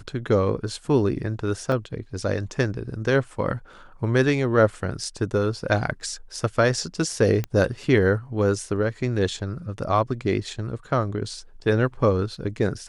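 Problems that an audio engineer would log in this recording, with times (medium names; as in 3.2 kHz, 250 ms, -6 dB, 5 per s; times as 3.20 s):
1.72 s: dropout 2.4 ms
7.44 s: pop -14 dBFS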